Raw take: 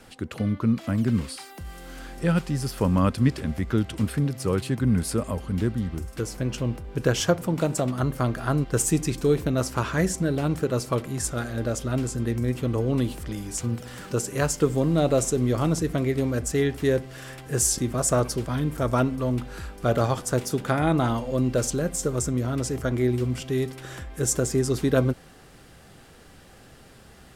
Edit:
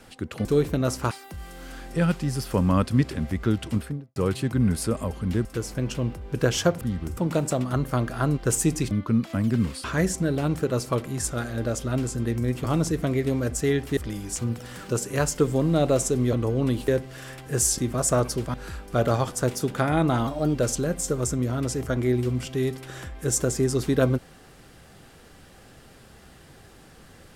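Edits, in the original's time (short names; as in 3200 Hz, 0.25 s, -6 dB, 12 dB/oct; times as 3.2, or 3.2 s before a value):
0.45–1.38 swap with 9.18–9.84
3.94–4.43 studio fade out
5.72–6.08 move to 7.44
12.64–13.19 swap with 15.55–16.88
18.54–19.44 cut
21.17–21.5 speed 118%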